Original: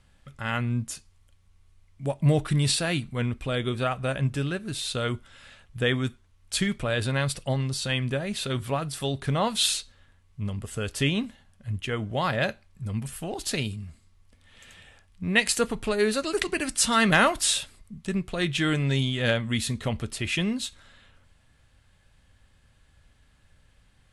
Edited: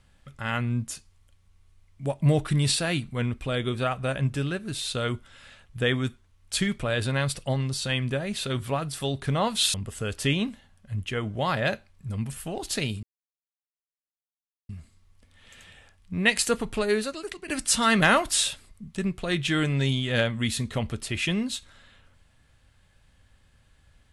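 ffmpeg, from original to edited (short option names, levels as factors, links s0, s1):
-filter_complex "[0:a]asplit=4[s0][s1][s2][s3];[s0]atrim=end=9.742[s4];[s1]atrim=start=10.498:end=13.79,asetpts=PTS-STARTPTS,afade=t=out:st=3.288:d=0.004:c=hsin,apad=pad_dur=1.66[s5];[s2]atrim=start=13.79:end=16.58,asetpts=PTS-STARTPTS,afade=t=in:d=0.004:c=hsin,afade=t=out:st=2.2:d=0.59:c=qua:silence=0.237137[s6];[s3]atrim=start=16.58,asetpts=PTS-STARTPTS,afade=t=in:d=0.004:c=hsin:silence=0.237137[s7];[s5][s6][s7]concat=n=3:v=0:a=1[s8];[s4][s8]acrossfade=d=0.004:c1=hsin:c2=hsin"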